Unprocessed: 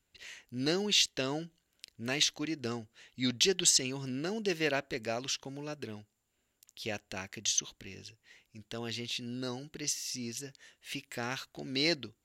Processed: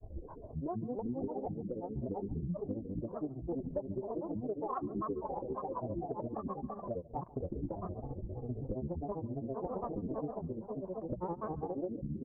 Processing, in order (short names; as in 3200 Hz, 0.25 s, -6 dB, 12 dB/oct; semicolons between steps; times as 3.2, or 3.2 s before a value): Wiener smoothing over 25 samples; steep low-pass 580 Hz 36 dB/oct; bell 280 Hz -14.5 dB 0.69 oct; comb 3.3 ms, depth 79%; bouncing-ball echo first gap 0.3 s, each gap 0.85×, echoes 5; upward compressor, threshold -38 dBFS; tremolo 0.8 Hz, depth 51%; grains 0.1 s, grains 15/s, pitch spread up and down by 12 st; echo 0.141 s -23.5 dB; compressor 10:1, threshold -47 dBFS, peak gain reduction 13.5 dB; gain +13.5 dB